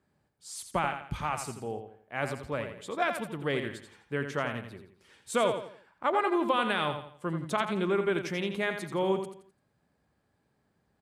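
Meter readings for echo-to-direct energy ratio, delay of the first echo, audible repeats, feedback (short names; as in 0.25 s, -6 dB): -7.5 dB, 85 ms, 4, 36%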